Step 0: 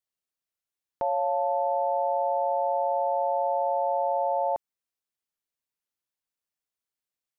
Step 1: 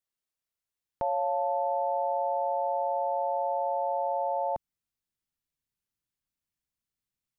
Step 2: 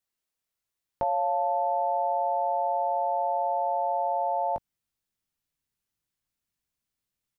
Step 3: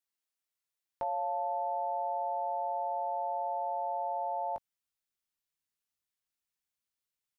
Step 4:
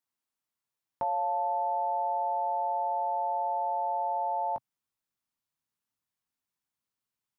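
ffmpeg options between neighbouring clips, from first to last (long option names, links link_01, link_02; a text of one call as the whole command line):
ffmpeg -i in.wav -af "asubboost=boost=4.5:cutoff=240,volume=-1dB" out.wav
ffmpeg -i in.wav -filter_complex "[0:a]asplit=2[link_01][link_02];[link_02]adelay=19,volume=-9dB[link_03];[link_01][link_03]amix=inputs=2:normalize=0,volume=3dB" out.wav
ffmpeg -i in.wav -af "lowshelf=frequency=470:gain=-10.5,volume=-4dB" out.wav
ffmpeg -i in.wav -af "equalizer=frequency=125:width_type=o:width=1:gain=8,equalizer=frequency=250:width_type=o:width=1:gain=7,equalizer=frequency=1000:width_type=o:width=1:gain=7,volume=-1.5dB" out.wav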